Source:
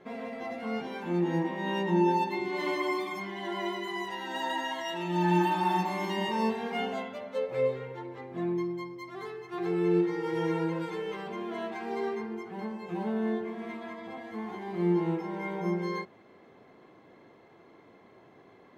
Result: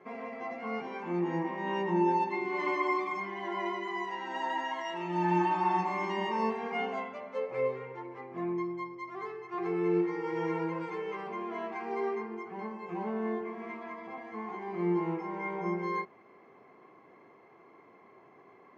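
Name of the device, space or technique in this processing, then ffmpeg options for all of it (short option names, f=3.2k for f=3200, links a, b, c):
car door speaker: -af "highpass=110,equalizer=f=400:t=q:w=4:g=5,equalizer=f=760:t=q:w=4:g=4,equalizer=f=1.1k:t=q:w=4:g=10,equalizer=f=2.2k:t=q:w=4:g=7,equalizer=f=3.7k:t=q:w=4:g=-10,lowpass=f=6.6k:w=0.5412,lowpass=f=6.6k:w=1.3066,volume=-5dB"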